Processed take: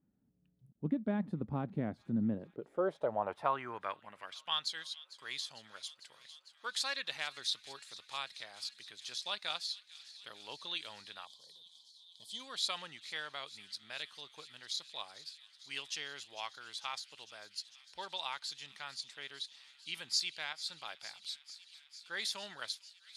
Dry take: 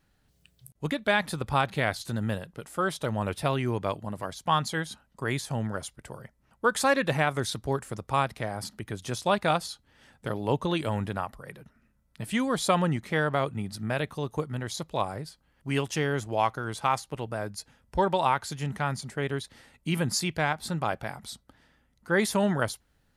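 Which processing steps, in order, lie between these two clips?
band-pass filter sweep 230 Hz → 4,100 Hz, 0:02.20–0:04.67
delay with a high-pass on its return 450 ms, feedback 82%, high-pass 2,800 Hz, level −15.5 dB
gain on a spectral selection 0:11.26–0:12.40, 1,100–3,000 Hz −21 dB
level +1.5 dB

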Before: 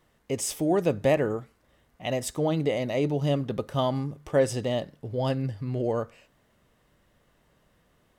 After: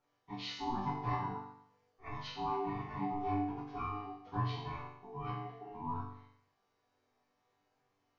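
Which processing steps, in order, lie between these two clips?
partials spread apart or drawn together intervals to 77%
ring modulation 570 Hz
resonators tuned to a chord G2 major, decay 0.72 s
level +9.5 dB

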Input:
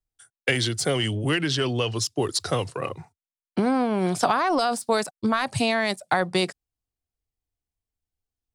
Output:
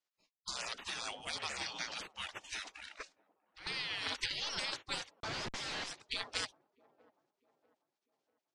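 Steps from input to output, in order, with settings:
0:03.00–0:03.67: compressor whose output falls as the input rises −30 dBFS, ratio −0.5
gate on every frequency bin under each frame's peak −30 dB weak
on a send: delay with a band-pass on its return 643 ms, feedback 41%, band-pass 410 Hz, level −18 dB
0:05.20–0:05.84: on the sum: comparator with hysteresis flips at −55 dBFS
low-pass filter 6,300 Hz 24 dB per octave
level +7.5 dB

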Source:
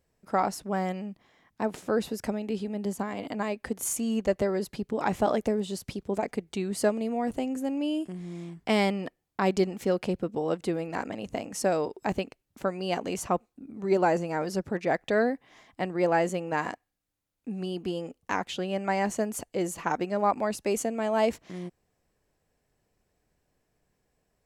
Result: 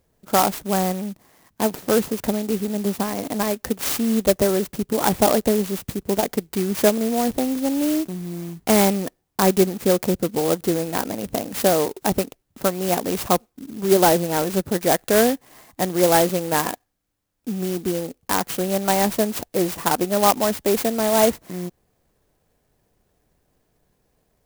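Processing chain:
converter with an unsteady clock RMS 0.093 ms
level +8 dB

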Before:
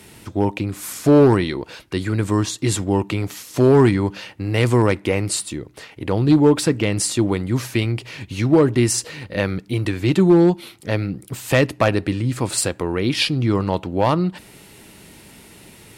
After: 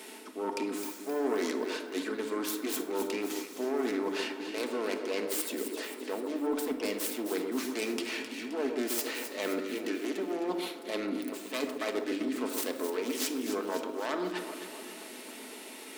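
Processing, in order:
phase distortion by the signal itself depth 0.32 ms
elliptic high-pass filter 250 Hz, stop band 40 dB
reversed playback
downward compressor 12 to 1, threshold −31 dBFS, peak gain reduction 21 dB
reversed playback
delay that swaps between a low-pass and a high-pass 131 ms, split 1,400 Hz, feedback 73%, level −6.5 dB
convolution reverb RT60 0.80 s, pre-delay 5 ms, DRR 5.5 dB

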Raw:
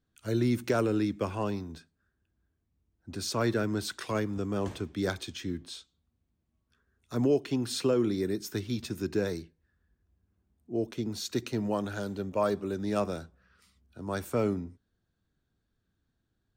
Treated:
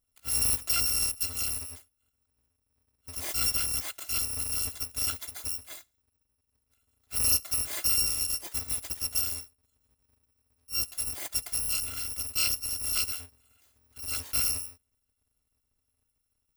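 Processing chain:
samples in bit-reversed order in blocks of 256 samples

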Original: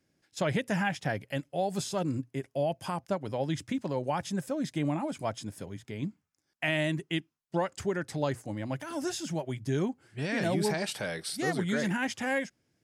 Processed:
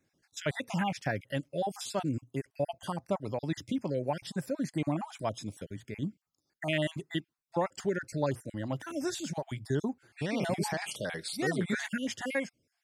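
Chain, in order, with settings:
time-frequency cells dropped at random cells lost 36%

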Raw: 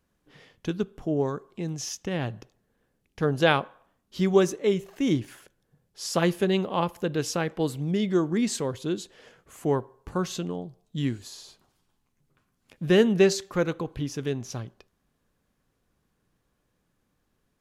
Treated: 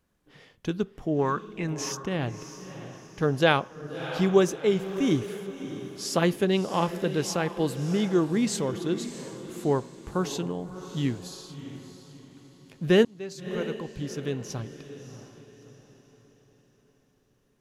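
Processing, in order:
0:01.19–0:01.92: flat-topped bell 1,600 Hz +11 dB
0:13.05–0:14.54: fade in
feedback delay with all-pass diffusion 644 ms, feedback 41%, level −11.5 dB

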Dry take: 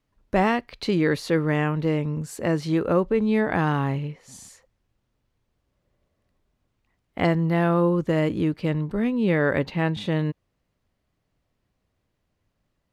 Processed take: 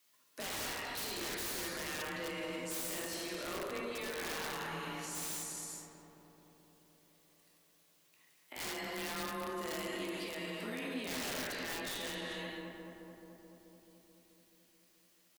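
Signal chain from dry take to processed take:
tempo change 0.84×
high-pass filter 96 Hz 24 dB per octave
reverb whose tail is shaped and stops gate 480 ms falling, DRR −2.5 dB
in parallel at 0 dB: downward compressor 8 to 1, threshold −35 dBFS, peak gain reduction 22 dB
on the sum: first difference
frequency shifter +24 Hz
wrap-around overflow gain 31.5 dB
brickwall limiter −43 dBFS, peak gain reduction 11.5 dB
parametric band 300 Hz +4 dB 0.85 octaves
on a send: feedback echo with a low-pass in the loop 216 ms, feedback 76%, low-pass 1,900 Hz, level −5 dB
on the sum: level +8 dB

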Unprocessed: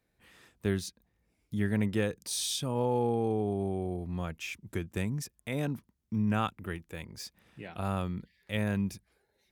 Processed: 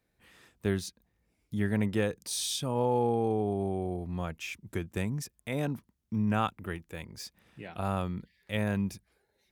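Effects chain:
dynamic equaliser 780 Hz, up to +3 dB, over −45 dBFS, Q 0.99

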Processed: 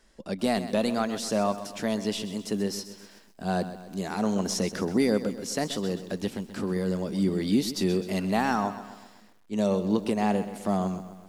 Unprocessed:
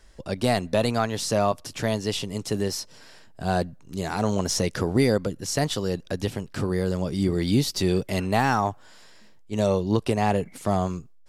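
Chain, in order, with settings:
low shelf with overshoot 160 Hz −6.5 dB, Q 3
feedback echo at a low word length 129 ms, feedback 55%, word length 8 bits, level −12.5 dB
level −4.5 dB

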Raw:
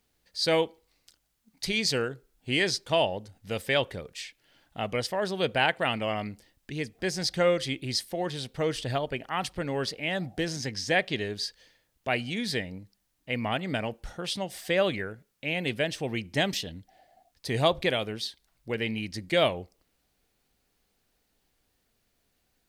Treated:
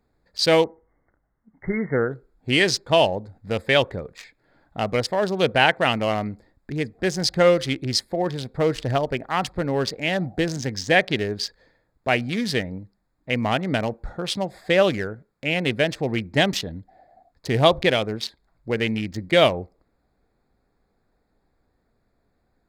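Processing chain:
adaptive Wiener filter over 15 samples
0:00.64–0:02.11: linear-phase brick-wall low-pass 2,200 Hz
level +7.5 dB

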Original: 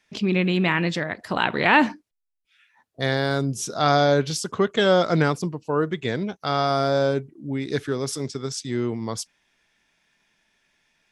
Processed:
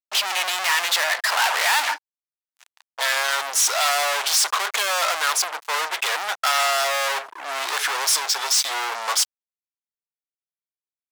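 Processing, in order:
fuzz pedal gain 43 dB, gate −51 dBFS
high-pass filter 780 Hz 24 dB per octave
level −3 dB

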